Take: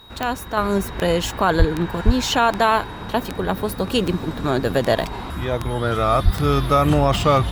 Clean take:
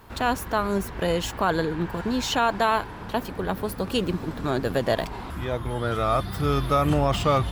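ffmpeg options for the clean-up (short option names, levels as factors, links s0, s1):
-filter_complex "[0:a]adeclick=t=4,bandreject=f=3800:w=30,asplit=3[s0][s1][s2];[s0]afade=t=out:st=1.58:d=0.02[s3];[s1]highpass=f=140:w=0.5412,highpass=f=140:w=1.3066,afade=t=in:st=1.58:d=0.02,afade=t=out:st=1.7:d=0.02[s4];[s2]afade=t=in:st=1.7:d=0.02[s5];[s3][s4][s5]amix=inputs=3:normalize=0,asplit=3[s6][s7][s8];[s6]afade=t=out:st=2.05:d=0.02[s9];[s7]highpass=f=140:w=0.5412,highpass=f=140:w=1.3066,afade=t=in:st=2.05:d=0.02,afade=t=out:st=2.17:d=0.02[s10];[s8]afade=t=in:st=2.17:d=0.02[s11];[s9][s10][s11]amix=inputs=3:normalize=0,asplit=3[s12][s13][s14];[s12]afade=t=out:st=6.24:d=0.02[s15];[s13]highpass=f=140:w=0.5412,highpass=f=140:w=1.3066,afade=t=in:st=6.24:d=0.02,afade=t=out:st=6.36:d=0.02[s16];[s14]afade=t=in:st=6.36:d=0.02[s17];[s15][s16][s17]amix=inputs=3:normalize=0,asetnsamples=n=441:p=0,asendcmd='0.57 volume volume -5dB',volume=1"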